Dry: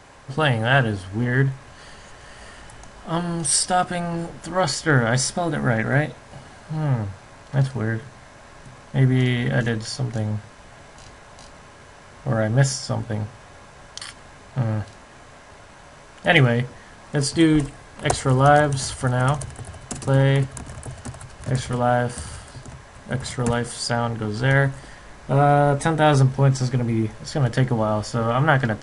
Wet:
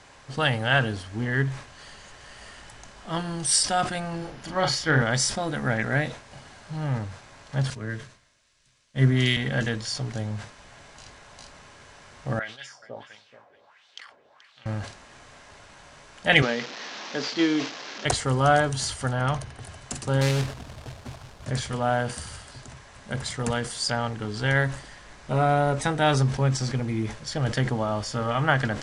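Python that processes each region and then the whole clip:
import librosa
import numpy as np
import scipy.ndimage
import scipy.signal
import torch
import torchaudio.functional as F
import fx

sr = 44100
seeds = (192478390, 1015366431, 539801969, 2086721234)

y = fx.chain(x, sr, fx.peak_eq(hz=8100.0, db=-10.0, octaves=0.5),
    fx.doubler(ms=38.0, db=-5.0), at=(4.18, 5.02))
y = fx.chain(y, sr, fx.notch(hz=800.0, q=5.1),
    fx.band_widen(depth_pct=100), at=(7.7, 9.37))
y = fx.chain(y, sr, fx.highpass(hz=53.0, slope=12),
    fx.wah_lfo(hz=1.5, low_hz=430.0, high_hz=3800.0, q=3.0),
    fx.echo_single(ms=429, db=-14.0), at=(12.39, 14.66))
y = fx.chain(y, sr, fx.delta_mod(bps=32000, step_db=-28.0),
    fx.highpass(hz=220.0, slope=24), at=(16.42, 18.05))
y = fx.chain(y, sr, fx.high_shelf(hz=6800.0, db=-11.0),
    fx.notch(hz=7600.0, q=5.5), at=(19.13, 19.61))
y = fx.chain(y, sr, fx.lowpass(hz=1100.0, slope=12),
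    fx.quant_companded(bits=4), at=(20.21, 21.46))
y = scipy.signal.sosfilt(scipy.signal.bessel(2, 6300.0, 'lowpass', norm='mag', fs=sr, output='sos'), y)
y = fx.high_shelf(y, sr, hz=2200.0, db=9.5)
y = fx.sustainer(y, sr, db_per_s=120.0)
y = y * 10.0 ** (-6.0 / 20.0)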